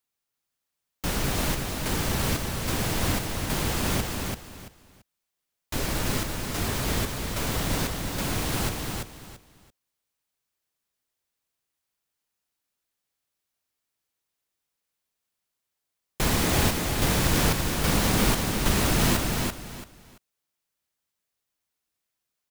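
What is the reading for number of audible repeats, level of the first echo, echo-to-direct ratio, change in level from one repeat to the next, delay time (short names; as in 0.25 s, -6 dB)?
3, -4.0 dB, -3.5 dB, -12.5 dB, 0.337 s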